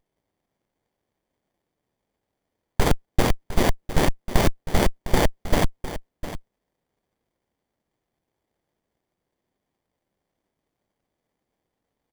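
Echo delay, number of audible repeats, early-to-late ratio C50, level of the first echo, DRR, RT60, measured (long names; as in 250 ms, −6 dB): 706 ms, 1, no reverb audible, −13.0 dB, no reverb audible, no reverb audible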